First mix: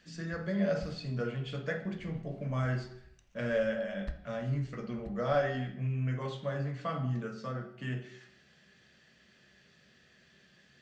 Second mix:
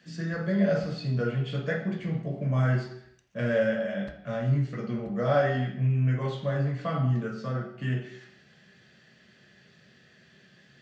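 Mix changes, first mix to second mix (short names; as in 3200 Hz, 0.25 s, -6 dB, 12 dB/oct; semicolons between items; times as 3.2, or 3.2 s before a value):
speech: send +7.5 dB; master: add HPF 100 Hz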